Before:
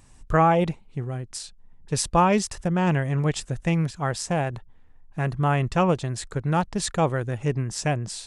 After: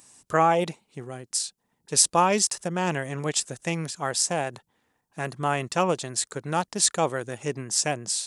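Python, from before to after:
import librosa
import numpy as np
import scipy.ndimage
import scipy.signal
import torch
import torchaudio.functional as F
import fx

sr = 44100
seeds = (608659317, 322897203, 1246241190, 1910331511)

y = scipy.signal.sosfilt(scipy.signal.butter(2, 170.0, 'highpass', fs=sr, output='sos'), x)
y = fx.bass_treble(y, sr, bass_db=-5, treble_db=11)
y = y * 10.0 ** (-1.0 / 20.0)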